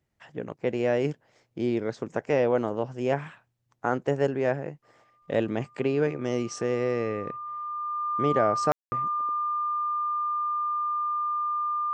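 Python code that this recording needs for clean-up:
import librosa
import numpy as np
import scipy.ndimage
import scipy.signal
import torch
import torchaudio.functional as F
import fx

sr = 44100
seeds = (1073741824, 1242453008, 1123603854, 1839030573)

y = fx.notch(x, sr, hz=1200.0, q=30.0)
y = fx.fix_ambience(y, sr, seeds[0], print_start_s=3.34, print_end_s=3.84, start_s=8.72, end_s=8.92)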